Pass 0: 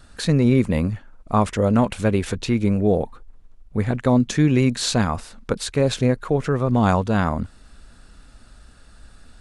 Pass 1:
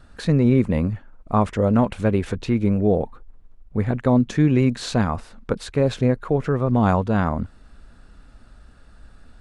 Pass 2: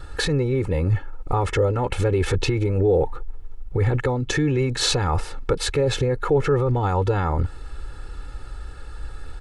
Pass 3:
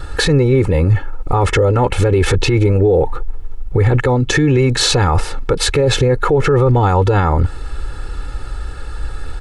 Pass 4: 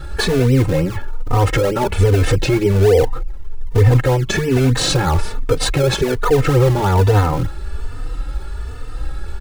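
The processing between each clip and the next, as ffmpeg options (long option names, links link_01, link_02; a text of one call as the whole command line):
ffmpeg -i in.wav -af "highshelf=frequency=3300:gain=-11.5" out.wav
ffmpeg -i in.wav -af "acompressor=threshold=-20dB:ratio=6,alimiter=limit=-21.5dB:level=0:latency=1:release=16,aecho=1:1:2.3:0.93,volume=8dB" out.wav
ffmpeg -i in.wav -af "alimiter=level_in=14dB:limit=-1dB:release=50:level=0:latency=1,volume=-4dB" out.wav
ffmpeg -i in.wav -filter_complex "[0:a]asplit=2[link_01][link_02];[link_02]acrusher=samples=32:mix=1:aa=0.000001:lfo=1:lforange=32:lforate=3.3,volume=-6.5dB[link_03];[link_01][link_03]amix=inputs=2:normalize=0,asplit=2[link_04][link_05];[link_05]adelay=3.2,afreqshift=1.2[link_06];[link_04][link_06]amix=inputs=2:normalize=1,volume=-1dB" out.wav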